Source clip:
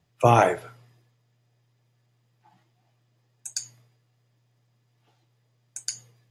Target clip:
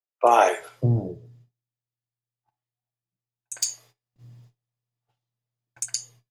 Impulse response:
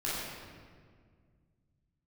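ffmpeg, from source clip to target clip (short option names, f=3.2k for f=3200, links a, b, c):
-filter_complex "[0:a]asettb=1/sr,asplit=3[a][b][c];[a]atrim=end=3.544[d];[b]atrim=start=3.54:end=5.8,asetpts=PTS-STARTPTS,afade=t=in:d=0.004:c=qsin,afade=t=out:st=2.256:d=0.004:c=qsin,aeval=exprs='0.224*(cos(1*acos(clip(val(0)/0.224,-1,1)))-cos(1*PI/2))+0.0112*(cos(3*acos(clip(val(0)/0.224,-1,1)))-cos(3*PI/2))+0.0631*(cos(5*acos(clip(val(0)/0.224,-1,1)))-cos(5*PI/2))':c=same[e];[c]atrim=start=5.796[f];[d][e]acrossfade=d=0.004:c1=hsin:c2=qsin[g];[g][f]acrossfade=d=0.004:c1=qsin:c2=hsin,acrossover=split=340|2000[h][i][j];[j]adelay=60[k];[h]adelay=590[l];[l][i][k]amix=inputs=3:normalize=0,agate=range=-29dB:threshold=-55dB:ratio=16:detection=peak,asplit=2[m][n];[1:a]atrim=start_sample=2205,atrim=end_sample=3528[o];[n][o]afir=irnorm=-1:irlink=0,volume=-22dB[p];[m][p]amix=inputs=2:normalize=0,volume=2dB"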